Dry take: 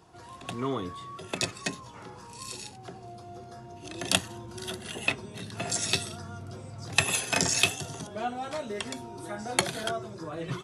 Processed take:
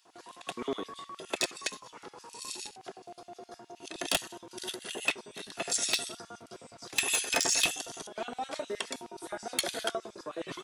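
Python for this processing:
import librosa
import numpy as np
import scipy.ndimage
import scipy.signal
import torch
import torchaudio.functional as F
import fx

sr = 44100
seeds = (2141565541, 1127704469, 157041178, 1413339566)

y = fx.filter_lfo_highpass(x, sr, shape='square', hz=9.6, low_hz=330.0, high_hz=2900.0, q=0.94)
y = np.clip(y, -10.0 ** (-18.5 / 20.0), 10.0 ** (-18.5 / 20.0))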